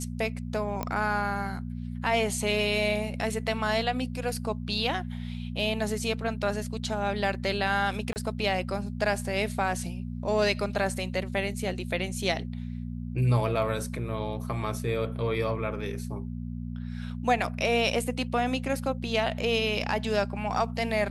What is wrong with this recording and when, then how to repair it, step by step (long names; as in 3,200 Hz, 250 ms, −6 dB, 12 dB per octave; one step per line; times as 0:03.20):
mains hum 60 Hz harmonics 4 −35 dBFS
0:00.83: click −16 dBFS
0:08.13–0:08.16: drop-out 29 ms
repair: click removal
hum removal 60 Hz, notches 4
repair the gap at 0:08.13, 29 ms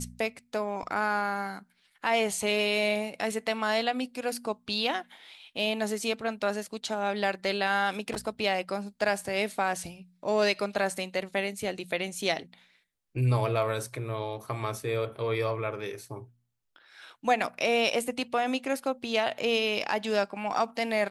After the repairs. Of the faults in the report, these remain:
0:00.83: click